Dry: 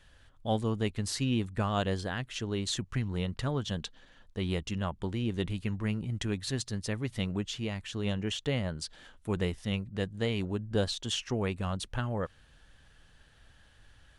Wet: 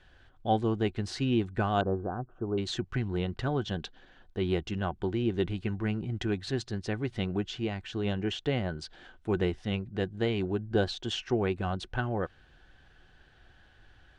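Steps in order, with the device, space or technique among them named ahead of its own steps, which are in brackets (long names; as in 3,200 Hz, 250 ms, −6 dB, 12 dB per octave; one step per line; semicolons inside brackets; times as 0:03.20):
inside a cardboard box (low-pass filter 4,500 Hz 12 dB per octave; hollow resonant body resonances 360/740/1,500 Hz, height 10 dB, ringing for 45 ms)
0:01.81–0:02.58: elliptic low-pass filter 1,300 Hz, stop band 40 dB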